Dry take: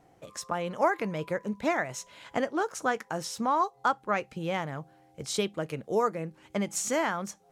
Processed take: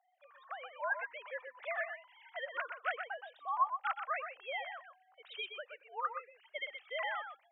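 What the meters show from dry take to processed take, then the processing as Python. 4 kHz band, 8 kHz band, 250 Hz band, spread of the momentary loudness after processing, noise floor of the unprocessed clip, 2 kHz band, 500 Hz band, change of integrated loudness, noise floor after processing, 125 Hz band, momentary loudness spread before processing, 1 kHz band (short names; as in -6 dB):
-7.0 dB, under -40 dB, under -40 dB, 12 LU, -62 dBFS, -4.0 dB, -14.5 dB, -9.5 dB, -71 dBFS, under -40 dB, 11 LU, -8.0 dB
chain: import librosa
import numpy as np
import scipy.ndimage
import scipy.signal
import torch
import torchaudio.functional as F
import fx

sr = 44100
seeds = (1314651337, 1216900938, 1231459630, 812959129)

p1 = fx.sine_speech(x, sr)
p2 = fx.rider(p1, sr, range_db=5, speed_s=0.5)
p3 = scipy.signal.sosfilt(scipy.signal.bessel(8, 1100.0, 'highpass', norm='mag', fs=sr, output='sos'), p2)
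p4 = p3 + fx.echo_single(p3, sr, ms=123, db=-7.5, dry=0)
y = F.gain(torch.from_numpy(p4), -3.5).numpy()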